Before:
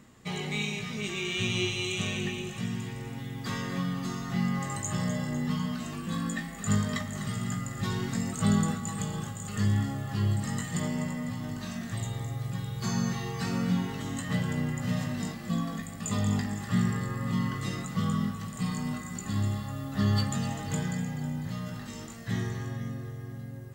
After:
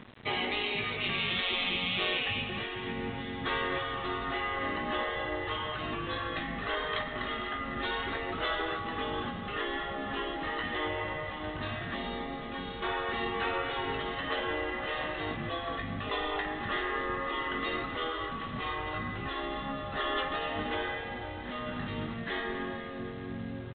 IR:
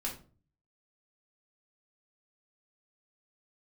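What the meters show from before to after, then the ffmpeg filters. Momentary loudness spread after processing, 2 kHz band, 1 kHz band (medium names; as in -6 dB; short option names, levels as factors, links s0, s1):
6 LU, +5.5 dB, +6.0 dB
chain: -af "afftfilt=real='re*lt(hypot(re,im),0.0794)':imag='im*lt(hypot(re,im),0.0794)':win_size=1024:overlap=0.75,aresample=8000,aeval=exprs='val(0)*gte(abs(val(0)),0.00211)':c=same,aresample=44100,volume=2.24"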